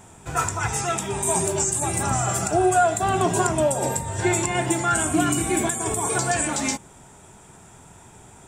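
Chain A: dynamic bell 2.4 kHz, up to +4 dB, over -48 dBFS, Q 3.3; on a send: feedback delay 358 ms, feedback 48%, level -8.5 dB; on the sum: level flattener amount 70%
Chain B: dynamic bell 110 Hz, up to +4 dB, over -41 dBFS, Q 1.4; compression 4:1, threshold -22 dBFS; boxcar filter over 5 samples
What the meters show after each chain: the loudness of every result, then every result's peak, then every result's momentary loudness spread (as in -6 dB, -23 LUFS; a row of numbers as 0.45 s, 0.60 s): -17.0 LUFS, -27.5 LUFS; -2.0 dBFS, -13.5 dBFS; 5 LU, 4 LU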